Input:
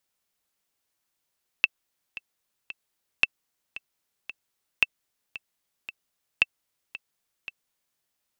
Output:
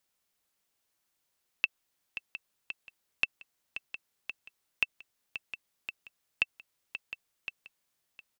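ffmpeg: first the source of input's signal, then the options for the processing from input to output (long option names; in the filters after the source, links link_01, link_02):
-f lavfi -i "aevalsrc='pow(10,(-5-17.5*gte(mod(t,3*60/113),60/113))/20)*sin(2*PI*2660*mod(t,60/113))*exp(-6.91*mod(t,60/113)/0.03)':duration=6.37:sample_rate=44100"
-af "alimiter=limit=-11.5dB:level=0:latency=1:release=74,aecho=1:1:710:0.211"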